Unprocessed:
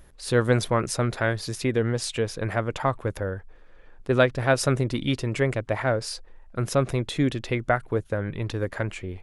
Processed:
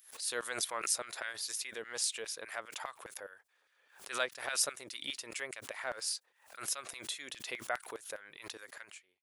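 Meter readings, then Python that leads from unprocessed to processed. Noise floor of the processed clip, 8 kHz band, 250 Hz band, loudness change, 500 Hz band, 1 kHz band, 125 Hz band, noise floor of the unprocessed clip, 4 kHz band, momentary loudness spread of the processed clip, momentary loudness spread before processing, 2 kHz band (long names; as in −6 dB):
−74 dBFS, +0.5 dB, −27.5 dB, −12.0 dB, −19.5 dB, −13.5 dB, −39.0 dB, −50 dBFS, −4.5 dB, 14 LU, 9 LU, −10.5 dB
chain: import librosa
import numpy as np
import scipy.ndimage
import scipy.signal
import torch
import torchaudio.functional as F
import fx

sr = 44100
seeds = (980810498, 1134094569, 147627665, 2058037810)

y = fx.fade_out_tail(x, sr, length_s=0.6)
y = fx.filter_lfo_highpass(y, sr, shape='saw_down', hz=4.9, low_hz=450.0, high_hz=2000.0, q=0.75)
y = scipy.signal.lfilter([1.0, -0.8], [1.0], y)
y = fx.pre_swell(y, sr, db_per_s=120.0)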